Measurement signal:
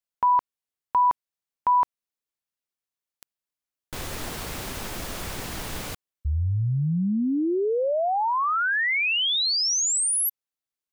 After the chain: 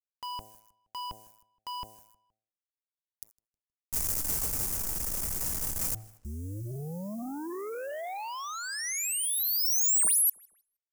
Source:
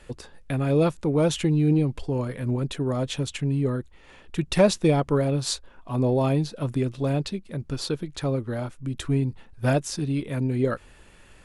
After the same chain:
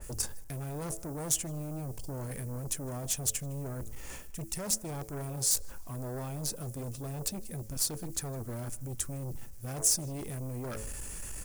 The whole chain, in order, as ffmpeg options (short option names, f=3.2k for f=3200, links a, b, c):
-filter_complex "[0:a]lowshelf=f=140:g=10,bandreject=f=109.2:t=h:w=4,bandreject=f=218.4:t=h:w=4,bandreject=f=327.6:t=h:w=4,bandreject=f=436.8:t=h:w=4,bandreject=f=546:t=h:w=4,bandreject=f=655.2:t=h:w=4,bandreject=f=764.4:t=h:w=4,areverse,acompressor=threshold=-30dB:ratio=20:attack=0.17:release=207:knee=1:detection=rms,areverse,aeval=exprs='0.0473*(cos(1*acos(clip(val(0)/0.0473,-1,1)))-cos(1*PI/2))+0.00531*(cos(3*acos(clip(val(0)/0.0473,-1,1)))-cos(3*PI/2))+0.015*(cos(5*acos(clip(val(0)/0.0473,-1,1)))-cos(5*PI/2))':c=same,acrusher=bits=10:mix=0:aa=0.000001,aexciter=amount=8.2:drive=5.3:freq=5.4k,asoftclip=type=tanh:threshold=-10dB,asplit=2[a][b];[b]adelay=157,lowpass=f=3.5k:p=1,volume=-22.5dB,asplit=2[c][d];[d]adelay=157,lowpass=f=3.5k:p=1,volume=0.46,asplit=2[e][f];[f]adelay=157,lowpass=f=3.5k:p=1,volume=0.46[g];[c][e][g]amix=inputs=3:normalize=0[h];[a][h]amix=inputs=2:normalize=0,adynamicequalizer=threshold=0.01:dfrequency=2100:dqfactor=0.7:tfrequency=2100:tqfactor=0.7:attack=5:release=100:ratio=0.375:range=2.5:mode=cutabove:tftype=highshelf,volume=-3.5dB"